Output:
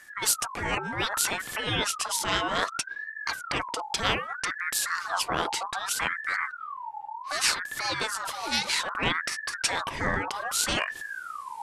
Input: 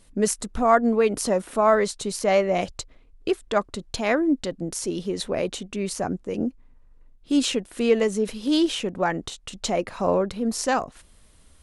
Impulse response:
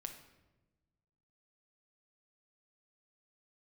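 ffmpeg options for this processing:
-af "asubboost=boost=6.5:cutoff=100,afftfilt=real='re*lt(hypot(re,im),0.251)':imag='im*lt(hypot(re,im),0.251)':win_size=1024:overlap=0.75,aeval=exprs='val(0)*sin(2*PI*1300*n/s+1300*0.35/0.64*sin(2*PI*0.64*n/s))':channel_layout=same,volume=6.5dB"

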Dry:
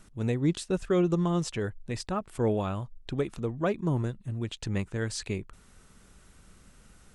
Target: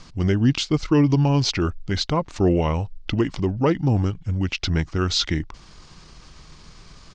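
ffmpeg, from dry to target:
ffmpeg -i in.wav -filter_complex "[0:a]asplit=2[link_01][link_02];[link_02]alimiter=level_in=1dB:limit=-24dB:level=0:latency=1,volume=-1dB,volume=-3dB[link_03];[link_01][link_03]amix=inputs=2:normalize=0,asetrate=36028,aresample=44100,atempo=1.22405,lowpass=frequency=4700:width_type=q:width=2.2,volume=5.5dB" out.wav

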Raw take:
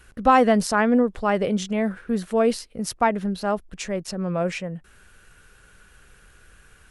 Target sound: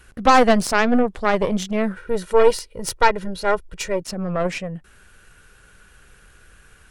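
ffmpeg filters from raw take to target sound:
ffmpeg -i in.wav -filter_complex "[0:a]aeval=exprs='0.562*(cos(1*acos(clip(val(0)/0.562,-1,1)))-cos(1*PI/2))+0.0891*(cos(6*acos(clip(val(0)/0.562,-1,1)))-cos(6*PI/2))':channel_layout=same,asettb=1/sr,asplit=3[link_01][link_02][link_03];[link_01]atrim=end=1.964[link_04];[link_02]atrim=start=1.96:end=4.02,asetpts=PTS-STARTPTS,afade=type=in:duration=0.004:curve=qsin,afade=type=out:start_time=2.056:duration=0.004:curve=qsin,aecho=1:1:2.1:0.73,atrim=end_sample=90846[link_05];[link_03]atrim=start=4.016[link_06];[link_04][link_05]acrossfade=duration=0.004:curve1=hsin:curve2=qsin[link_07];[link_07][link_06]acrossfade=duration=0.004:curve1=qsin:curve2=hsin,volume=2dB" out.wav

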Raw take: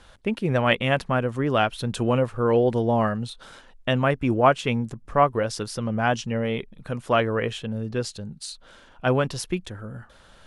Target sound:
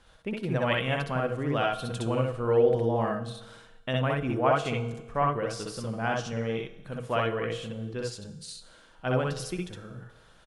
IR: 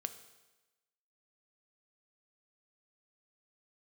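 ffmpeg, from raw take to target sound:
-filter_complex "[0:a]asplit=2[link_01][link_02];[link_02]aecho=1:1:6.3:0.55[link_03];[1:a]atrim=start_sample=2205,adelay=62[link_04];[link_03][link_04]afir=irnorm=-1:irlink=0,volume=0.5dB[link_05];[link_01][link_05]amix=inputs=2:normalize=0,volume=-8.5dB"

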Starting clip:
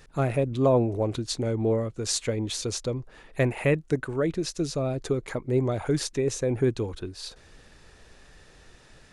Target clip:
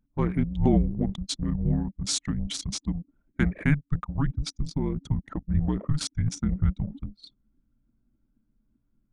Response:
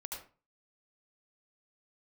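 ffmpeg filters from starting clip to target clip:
-af "afreqshift=-300,anlmdn=15.8"

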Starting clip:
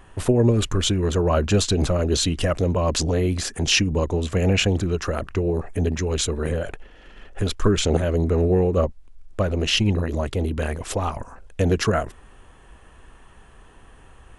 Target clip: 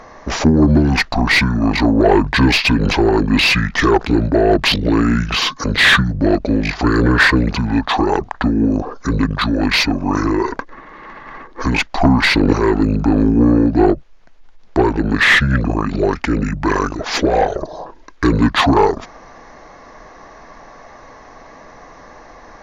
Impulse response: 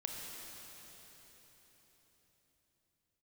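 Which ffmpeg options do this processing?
-filter_complex "[0:a]asetrate=28048,aresample=44100,asplit=2[link_01][link_02];[link_02]highpass=frequency=720:poles=1,volume=18dB,asoftclip=type=tanh:threshold=-6dB[link_03];[link_01][link_03]amix=inputs=2:normalize=0,lowpass=frequency=2200:poles=1,volume=-6dB,volume=5.5dB"

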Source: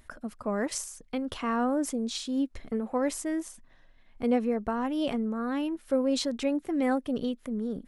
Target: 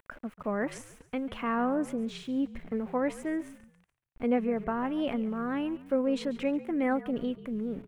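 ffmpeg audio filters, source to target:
ffmpeg -i in.wav -filter_complex "[0:a]aeval=exprs='val(0)*gte(abs(val(0)),0.00376)':channel_layout=same,highshelf=frequency=3400:width_type=q:width=1.5:gain=-11,asplit=4[link_01][link_02][link_03][link_04];[link_02]adelay=141,afreqshift=-48,volume=-17dB[link_05];[link_03]adelay=282,afreqshift=-96,volume=-25.4dB[link_06];[link_04]adelay=423,afreqshift=-144,volume=-33.8dB[link_07];[link_01][link_05][link_06][link_07]amix=inputs=4:normalize=0,volume=-1.5dB" out.wav

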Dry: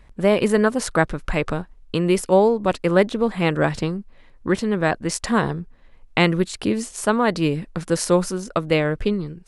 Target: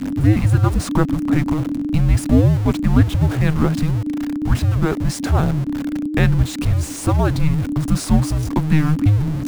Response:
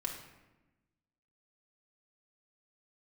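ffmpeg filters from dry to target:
-af "aeval=exprs='val(0)+0.5*0.1*sgn(val(0))':channel_layout=same,tiltshelf=frequency=1100:gain=5.5,afreqshift=-310,volume=-2.5dB"

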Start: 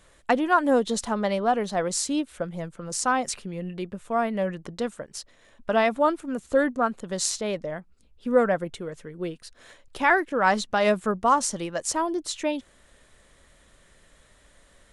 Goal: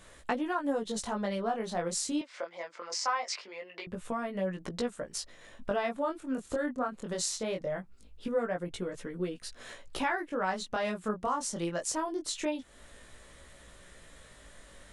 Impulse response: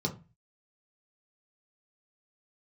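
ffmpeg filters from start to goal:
-filter_complex "[0:a]acompressor=threshold=-37dB:ratio=3,flanger=delay=16:depth=7.8:speed=0.22,asettb=1/sr,asplit=3[link_01][link_02][link_03];[link_01]atrim=end=2.214[link_04];[link_02]atrim=start=2.21:end=3.87,asetpts=PTS-STARTPTS,afade=type=in:duration=0.004:curve=qsin,afade=type=out:start_time=1.656:duration=0.004:curve=qsin,highpass=frequency=430:width=0.5412,highpass=frequency=430:width=1.3066,equalizer=frequency=440:width_type=q:width=4:gain=-5,equalizer=frequency=1000:width_type=q:width=4:gain=6,equalizer=frequency=2100:width_type=q:width=4:gain=9,equalizer=frequency=5000:width_type=q:width=4:gain=8,lowpass=frequency=6400:width=0.5412,lowpass=frequency=6400:width=1.3066[link_05];[link_03]atrim=start=3.866[link_06];[link_04][link_05]acrossfade=duration=0.004:curve1=hsin:curve2=qsin[link_07];[link_07][link_06]acrossfade=duration=0.004:curve1=qsin:curve2=hsin,volume=6.5dB"

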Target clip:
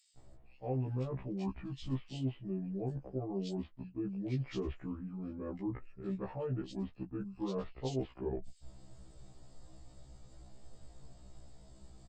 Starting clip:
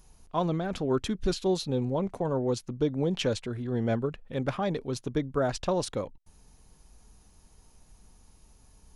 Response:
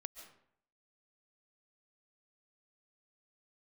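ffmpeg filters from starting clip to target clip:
-filter_complex "[0:a]highshelf=frequency=2000:gain=-11,areverse,acompressor=threshold=-43dB:ratio=4,areverse,acrossover=split=3200[link_01][link_02];[link_01]adelay=130[link_03];[link_03][link_02]amix=inputs=2:normalize=0,asetrate=32667,aresample=44100,afftfilt=real='re*1.73*eq(mod(b,3),0)':imag='im*1.73*eq(mod(b,3),0)':win_size=2048:overlap=0.75,volume=8dB"

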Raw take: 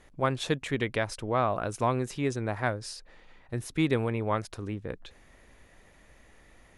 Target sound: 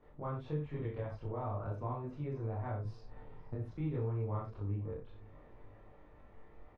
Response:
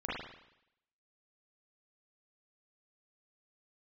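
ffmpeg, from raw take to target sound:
-filter_complex "[0:a]firequalizer=gain_entry='entry(1100,0);entry(1600,-10);entry(7200,-28)':delay=0.05:min_phase=1[link_01];[1:a]atrim=start_sample=2205,afade=type=out:start_time=0.28:duration=0.01,atrim=end_sample=12789,asetrate=79380,aresample=44100[link_02];[link_01][link_02]afir=irnorm=-1:irlink=0,acrossover=split=130[link_03][link_04];[link_04]acompressor=threshold=-50dB:ratio=2[link_05];[link_03][link_05]amix=inputs=2:normalize=0,asettb=1/sr,asplit=3[link_06][link_07][link_08];[link_06]atrim=end=2.854[link_09];[link_07]atrim=start=2.85:end=3.55,asetpts=PTS-STARTPTS,afade=type=in:duration=0.004:curve=qsin,afade=type=out:start_time=0.696:duration=0.004:curve=qsin,bass=frequency=250:gain=9,treble=frequency=4000:gain=2[link_10];[link_08]atrim=start=3.546[link_11];[link_09][link_10]acrossfade=duration=0.004:curve1=hsin:curve2=qsin[link_12];[link_12][link_11]acrossfade=duration=0.004:curve1=qsin:curve2=hsin,aecho=1:1:509|1018|1527:0.0794|0.0397|0.0199"

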